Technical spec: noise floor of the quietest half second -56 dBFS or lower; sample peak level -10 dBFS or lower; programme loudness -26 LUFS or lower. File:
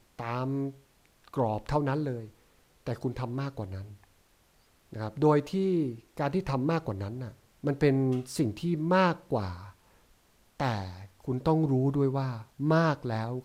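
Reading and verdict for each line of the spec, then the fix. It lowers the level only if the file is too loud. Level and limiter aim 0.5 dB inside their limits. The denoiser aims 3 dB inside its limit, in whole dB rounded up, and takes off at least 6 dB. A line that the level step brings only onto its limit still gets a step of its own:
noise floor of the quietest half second -65 dBFS: pass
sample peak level -12.5 dBFS: pass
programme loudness -30.0 LUFS: pass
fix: none needed

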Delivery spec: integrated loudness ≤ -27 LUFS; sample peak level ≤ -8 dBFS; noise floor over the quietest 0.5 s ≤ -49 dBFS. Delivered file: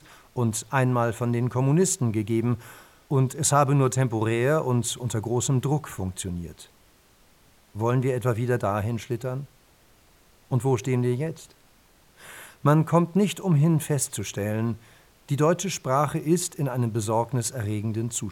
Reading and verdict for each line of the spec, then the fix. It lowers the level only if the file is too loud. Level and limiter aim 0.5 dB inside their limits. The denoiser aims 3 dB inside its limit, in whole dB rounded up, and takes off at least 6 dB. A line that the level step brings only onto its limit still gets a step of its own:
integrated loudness -25.0 LUFS: fail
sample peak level -7.0 dBFS: fail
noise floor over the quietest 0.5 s -58 dBFS: pass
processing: trim -2.5 dB

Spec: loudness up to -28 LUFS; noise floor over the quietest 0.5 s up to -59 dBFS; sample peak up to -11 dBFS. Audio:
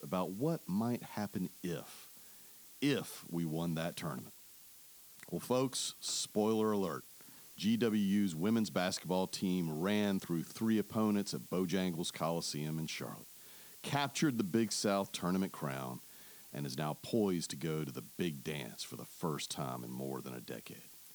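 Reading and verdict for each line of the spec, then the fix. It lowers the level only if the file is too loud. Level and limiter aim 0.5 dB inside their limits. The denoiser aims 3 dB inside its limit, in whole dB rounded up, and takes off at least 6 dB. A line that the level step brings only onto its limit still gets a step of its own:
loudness -37.0 LUFS: pass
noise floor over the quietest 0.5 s -58 dBFS: fail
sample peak -19.5 dBFS: pass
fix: noise reduction 6 dB, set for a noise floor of -58 dBFS

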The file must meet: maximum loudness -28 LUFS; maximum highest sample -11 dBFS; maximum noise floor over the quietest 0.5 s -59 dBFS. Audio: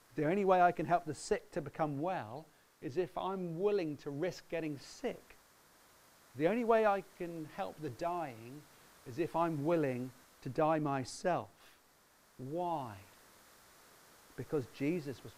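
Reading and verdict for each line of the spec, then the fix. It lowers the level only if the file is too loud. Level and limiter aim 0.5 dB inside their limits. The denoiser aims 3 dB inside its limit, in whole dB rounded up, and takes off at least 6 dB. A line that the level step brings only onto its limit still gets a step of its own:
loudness -36.0 LUFS: pass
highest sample -15.5 dBFS: pass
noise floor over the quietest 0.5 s -67 dBFS: pass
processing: none needed

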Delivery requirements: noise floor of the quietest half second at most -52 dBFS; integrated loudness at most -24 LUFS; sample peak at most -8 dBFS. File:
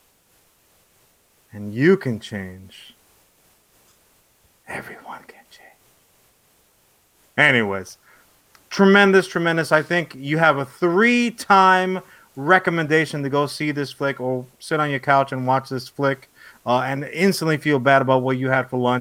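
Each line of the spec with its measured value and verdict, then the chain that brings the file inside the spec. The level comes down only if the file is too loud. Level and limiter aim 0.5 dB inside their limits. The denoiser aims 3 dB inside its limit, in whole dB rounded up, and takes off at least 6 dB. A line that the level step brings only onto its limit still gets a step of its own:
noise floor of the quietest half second -60 dBFS: pass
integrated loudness -19.0 LUFS: fail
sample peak -2.0 dBFS: fail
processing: trim -5.5 dB; peak limiter -8.5 dBFS

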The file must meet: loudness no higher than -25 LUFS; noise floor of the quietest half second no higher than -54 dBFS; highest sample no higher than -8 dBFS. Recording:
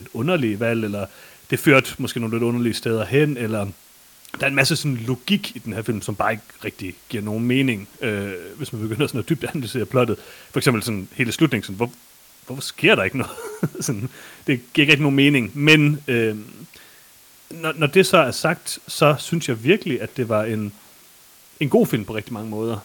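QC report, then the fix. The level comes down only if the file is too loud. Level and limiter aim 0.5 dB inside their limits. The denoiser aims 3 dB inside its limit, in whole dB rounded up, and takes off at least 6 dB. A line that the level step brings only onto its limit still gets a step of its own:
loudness -20.5 LUFS: fail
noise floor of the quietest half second -49 dBFS: fail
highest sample -1.5 dBFS: fail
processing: noise reduction 6 dB, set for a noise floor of -49 dBFS; trim -5 dB; peak limiter -8.5 dBFS

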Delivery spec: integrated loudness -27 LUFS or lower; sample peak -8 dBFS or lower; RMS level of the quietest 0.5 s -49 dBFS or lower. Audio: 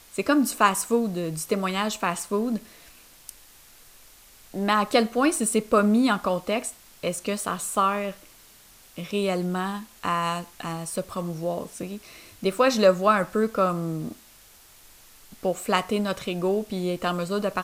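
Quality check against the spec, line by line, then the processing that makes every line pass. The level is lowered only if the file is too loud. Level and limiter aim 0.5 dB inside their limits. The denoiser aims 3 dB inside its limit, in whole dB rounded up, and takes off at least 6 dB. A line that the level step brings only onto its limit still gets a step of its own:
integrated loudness -25.0 LUFS: fail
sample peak -5.5 dBFS: fail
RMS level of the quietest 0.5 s -52 dBFS: pass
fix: trim -2.5 dB; peak limiter -8.5 dBFS

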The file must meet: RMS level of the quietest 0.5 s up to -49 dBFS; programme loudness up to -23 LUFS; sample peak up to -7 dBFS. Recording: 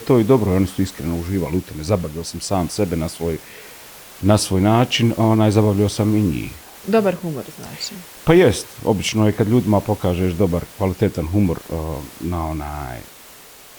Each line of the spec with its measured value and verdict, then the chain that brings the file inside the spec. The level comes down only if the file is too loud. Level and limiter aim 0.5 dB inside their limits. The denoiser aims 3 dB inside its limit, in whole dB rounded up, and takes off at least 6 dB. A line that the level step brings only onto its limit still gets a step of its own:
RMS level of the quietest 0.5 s -42 dBFS: fail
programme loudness -19.0 LUFS: fail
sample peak -2.5 dBFS: fail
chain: noise reduction 6 dB, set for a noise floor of -42 dBFS; trim -4.5 dB; peak limiter -7.5 dBFS

